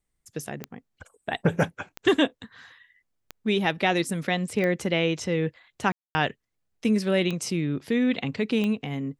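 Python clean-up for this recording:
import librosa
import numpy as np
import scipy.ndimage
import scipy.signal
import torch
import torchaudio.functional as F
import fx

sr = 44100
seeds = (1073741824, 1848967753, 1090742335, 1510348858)

y = fx.fix_declick_ar(x, sr, threshold=10.0)
y = fx.fix_ambience(y, sr, seeds[0], print_start_s=2.94, print_end_s=3.44, start_s=5.92, end_s=6.15)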